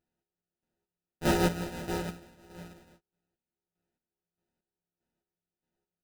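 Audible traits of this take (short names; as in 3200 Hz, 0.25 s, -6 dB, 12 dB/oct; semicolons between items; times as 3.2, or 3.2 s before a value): a buzz of ramps at a fixed pitch in blocks of 256 samples; chopped level 1.6 Hz, depth 65%, duty 35%; aliases and images of a low sample rate 1100 Hz, jitter 0%; a shimmering, thickened sound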